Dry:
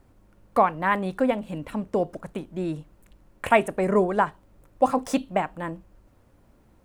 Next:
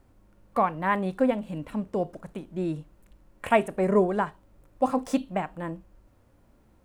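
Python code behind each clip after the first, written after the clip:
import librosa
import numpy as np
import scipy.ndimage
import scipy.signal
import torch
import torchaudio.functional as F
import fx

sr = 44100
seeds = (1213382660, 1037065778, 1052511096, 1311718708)

y = fx.hpss(x, sr, part='percussive', gain_db=-6)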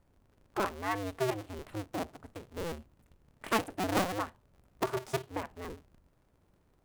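y = fx.cycle_switch(x, sr, every=2, mode='inverted')
y = F.gain(torch.from_numpy(y), -8.5).numpy()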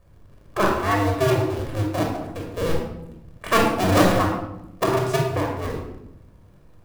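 y = fx.room_shoebox(x, sr, seeds[0], volume_m3=2700.0, walls='furnished', distance_m=5.7)
y = F.gain(torch.from_numpy(y), 7.0).numpy()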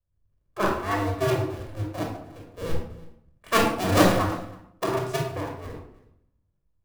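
y = x + 10.0 ** (-15.0 / 20.0) * np.pad(x, (int(325 * sr / 1000.0), 0))[:len(x)]
y = fx.band_widen(y, sr, depth_pct=70)
y = F.gain(torch.from_numpy(y), -5.5).numpy()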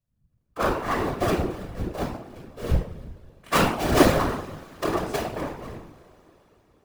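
y = fx.rev_double_slope(x, sr, seeds[1], early_s=0.26, late_s=4.6, knee_db=-20, drr_db=10.5)
y = fx.whisperise(y, sr, seeds[2])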